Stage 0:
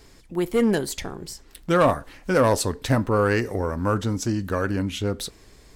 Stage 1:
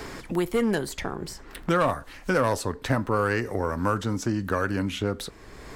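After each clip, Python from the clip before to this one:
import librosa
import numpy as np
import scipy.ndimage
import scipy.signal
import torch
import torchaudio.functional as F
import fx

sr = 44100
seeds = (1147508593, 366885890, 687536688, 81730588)

y = fx.peak_eq(x, sr, hz=1300.0, db=4.5, octaves=1.5)
y = fx.band_squash(y, sr, depth_pct=70)
y = y * 10.0 ** (-4.5 / 20.0)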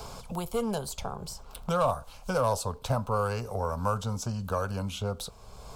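y = fx.fixed_phaser(x, sr, hz=770.0, stages=4)
y = fx.dmg_crackle(y, sr, seeds[0], per_s=170.0, level_db=-57.0)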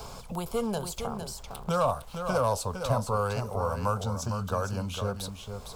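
y = np.where(np.abs(x) >= 10.0 ** (-53.5 / 20.0), x, 0.0)
y = y + 10.0 ** (-7.5 / 20.0) * np.pad(y, (int(458 * sr / 1000.0), 0))[:len(y)]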